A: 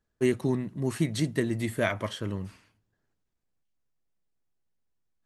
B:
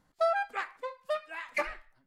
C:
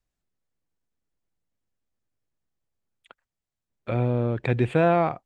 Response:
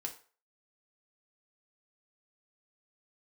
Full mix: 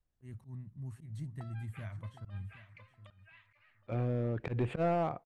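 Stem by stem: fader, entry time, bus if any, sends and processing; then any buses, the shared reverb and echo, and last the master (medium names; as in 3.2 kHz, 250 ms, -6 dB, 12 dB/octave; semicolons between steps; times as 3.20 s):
-3.5 dB, 0.00 s, no send, echo send -15.5 dB, FFT filter 100 Hz 0 dB, 410 Hz -28 dB, 860 Hz -18 dB, 4.9 kHz -20 dB, 8.7 kHz -12 dB
-3.0 dB, 1.20 s, no send, echo send -5 dB, compression 6:1, threshold -35 dBFS, peak gain reduction 12 dB; auto-wah 260–3000 Hz, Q 2.2, up, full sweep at -39.5 dBFS; auto duck -13 dB, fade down 0.85 s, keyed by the third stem
-2.5 dB, 0.00 s, send -20 dB, no echo send, overload inside the chain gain 17 dB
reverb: on, RT60 0.40 s, pre-delay 3 ms
echo: feedback delay 766 ms, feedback 15%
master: treble shelf 2.5 kHz -9 dB; slow attack 123 ms; peak limiter -25 dBFS, peak gain reduction 6.5 dB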